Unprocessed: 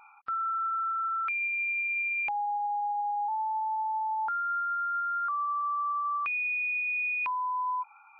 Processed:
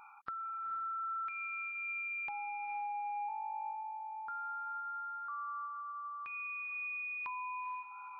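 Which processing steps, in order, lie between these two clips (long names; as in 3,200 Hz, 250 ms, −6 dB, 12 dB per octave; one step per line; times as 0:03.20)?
graphic EQ with 15 bands 160 Hz +3 dB, 630 Hz −5 dB, 2,500 Hz −6 dB
downward compressor 10 to 1, threshold −42 dBFS, peak gain reduction 12 dB
on a send: feedback delay with all-pass diffusion 467 ms, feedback 40%, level −8 dB
on the sum: level +1.5 dB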